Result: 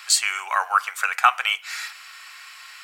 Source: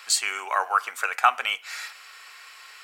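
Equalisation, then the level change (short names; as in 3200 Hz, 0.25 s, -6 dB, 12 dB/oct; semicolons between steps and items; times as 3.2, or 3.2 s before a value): HPF 920 Hz 12 dB/oct; +4.0 dB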